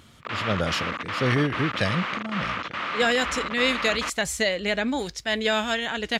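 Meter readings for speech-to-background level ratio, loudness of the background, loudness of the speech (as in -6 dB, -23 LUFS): 4.5 dB, -30.0 LUFS, -25.5 LUFS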